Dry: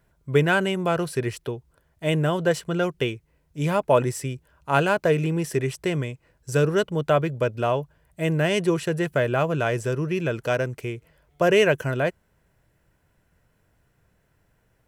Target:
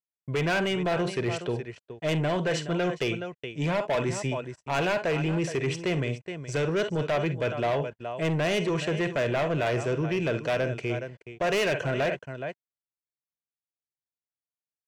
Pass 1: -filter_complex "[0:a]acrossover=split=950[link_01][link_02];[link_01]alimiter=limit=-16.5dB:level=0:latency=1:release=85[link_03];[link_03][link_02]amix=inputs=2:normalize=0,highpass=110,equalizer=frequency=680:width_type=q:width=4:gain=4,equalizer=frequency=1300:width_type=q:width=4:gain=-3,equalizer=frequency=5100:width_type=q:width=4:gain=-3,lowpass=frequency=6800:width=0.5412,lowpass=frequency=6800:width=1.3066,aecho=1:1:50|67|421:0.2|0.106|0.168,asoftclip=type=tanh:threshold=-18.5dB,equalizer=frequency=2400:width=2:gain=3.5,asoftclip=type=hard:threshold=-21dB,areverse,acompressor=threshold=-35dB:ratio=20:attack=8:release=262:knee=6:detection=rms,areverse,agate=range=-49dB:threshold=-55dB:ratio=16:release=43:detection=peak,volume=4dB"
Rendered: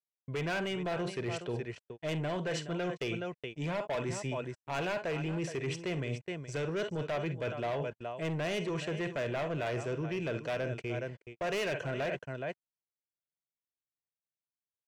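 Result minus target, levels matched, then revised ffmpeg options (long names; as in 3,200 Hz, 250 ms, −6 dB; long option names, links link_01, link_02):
downward compressor: peak gain reduction +8 dB
-filter_complex "[0:a]acrossover=split=950[link_01][link_02];[link_01]alimiter=limit=-16.5dB:level=0:latency=1:release=85[link_03];[link_03][link_02]amix=inputs=2:normalize=0,highpass=110,equalizer=frequency=680:width_type=q:width=4:gain=4,equalizer=frequency=1300:width_type=q:width=4:gain=-3,equalizer=frequency=5100:width_type=q:width=4:gain=-3,lowpass=frequency=6800:width=0.5412,lowpass=frequency=6800:width=1.3066,aecho=1:1:50|67|421:0.2|0.106|0.168,asoftclip=type=tanh:threshold=-18.5dB,equalizer=frequency=2400:width=2:gain=3.5,asoftclip=type=hard:threshold=-21dB,areverse,acompressor=threshold=-26.5dB:ratio=20:attack=8:release=262:knee=6:detection=rms,areverse,agate=range=-49dB:threshold=-55dB:ratio=16:release=43:detection=peak,volume=4dB"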